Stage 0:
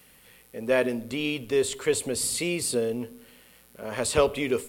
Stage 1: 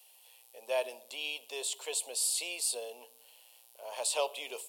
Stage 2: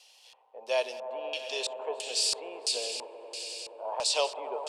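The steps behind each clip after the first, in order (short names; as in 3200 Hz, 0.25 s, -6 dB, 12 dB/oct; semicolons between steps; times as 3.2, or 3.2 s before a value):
Chebyshev high-pass 700 Hz, order 3; band shelf 1600 Hz -14.5 dB 1.1 oct; gain -2.5 dB
added harmonics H 5 -40 dB, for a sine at -17.5 dBFS; swelling echo 95 ms, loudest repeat 5, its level -15 dB; LFO low-pass square 1.5 Hz 970–5500 Hz; gain +3 dB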